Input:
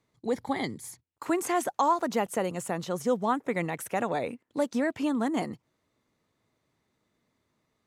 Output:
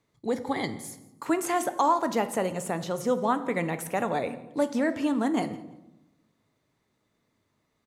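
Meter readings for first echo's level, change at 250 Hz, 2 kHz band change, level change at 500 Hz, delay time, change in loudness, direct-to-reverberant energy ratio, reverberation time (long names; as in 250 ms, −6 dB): −22.0 dB, +2.0 dB, +1.5 dB, +1.5 dB, 170 ms, +1.5 dB, 9.5 dB, 0.95 s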